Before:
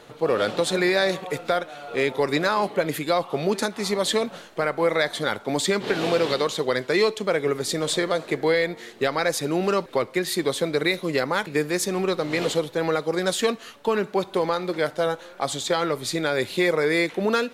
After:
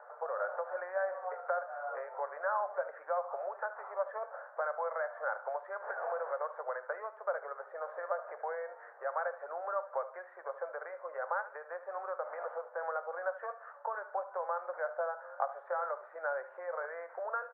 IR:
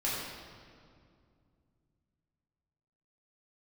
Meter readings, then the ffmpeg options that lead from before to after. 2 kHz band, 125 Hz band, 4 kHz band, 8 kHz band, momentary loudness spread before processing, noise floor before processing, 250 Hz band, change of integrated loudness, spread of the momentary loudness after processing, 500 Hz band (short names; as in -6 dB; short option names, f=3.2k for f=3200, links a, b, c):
-14.5 dB, under -40 dB, under -40 dB, under -40 dB, 4 LU, -45 dBFS, under -40 dB, -14.5 dB, 6 LU, -14.5 dB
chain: -filter_complex "[0:a]acompressor=threshold=-27dB:ratio=6,asuperpass=centerf=930:order=12:qfactor=0.86,aecho=1:1:74|148|222:0.178|0.0622|0.0218,asplit=2[a][b];[1:a]atrim=start_sample=2205,atrim=end_sample=3528[c];[b][c]afir=irnorm=-1:irlink=0,volume=-16.5dB[d];[a][d]amix=inputs=2:normalize=0,volume=-2dB"